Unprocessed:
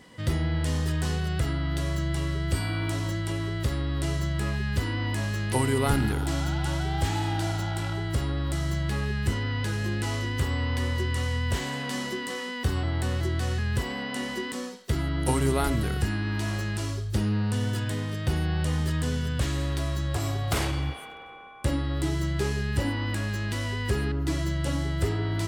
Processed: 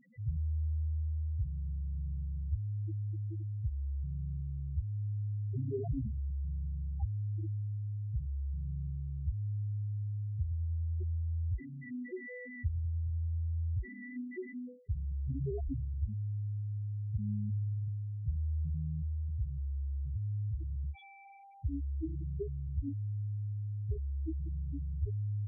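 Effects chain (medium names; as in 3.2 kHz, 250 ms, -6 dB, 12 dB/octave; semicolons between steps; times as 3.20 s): Chebyshev shaper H 8 -30 dB, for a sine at -11 dBFS; loudest bins only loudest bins 2; trim -4.5 dB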